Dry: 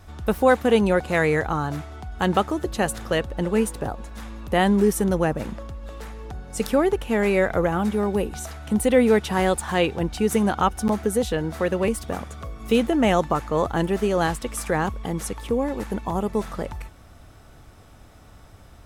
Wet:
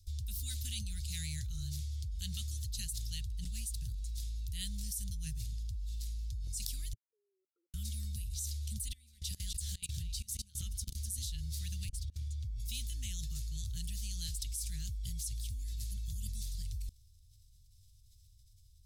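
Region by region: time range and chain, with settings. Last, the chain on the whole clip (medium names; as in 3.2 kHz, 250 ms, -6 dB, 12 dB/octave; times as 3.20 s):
6.93–7.74 s: resonances exaggerated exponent 3 + level held to a coarse grid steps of 23 dB + brick-wall FIR band-pass 330–1400 Hz
8.88–11.18 s: de-hum 125.1 Hz, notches 3 + compression 4:1, threshold -24 dBFS + delay 253 ms -11 dB
11.89–12.60 s: low-pass 2 kHz 6 dB/octave + compressor with a negative ratio -31 dBFS, ratio -0.5
whole clip: Chebyshev band-stop 110–4300 Hz, order 3; peaking EQ 310 Hz -13 dB 2.3 oct; level held to a coarse grid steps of 23 dB; trim +8 dB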